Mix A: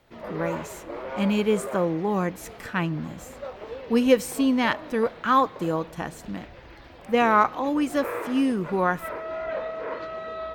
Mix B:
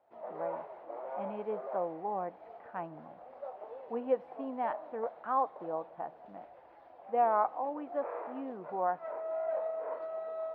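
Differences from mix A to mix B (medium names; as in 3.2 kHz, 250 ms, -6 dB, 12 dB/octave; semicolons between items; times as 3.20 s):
speech: add distance through air 450 m; master: add band-pass filter 730 Hz, Q 3.7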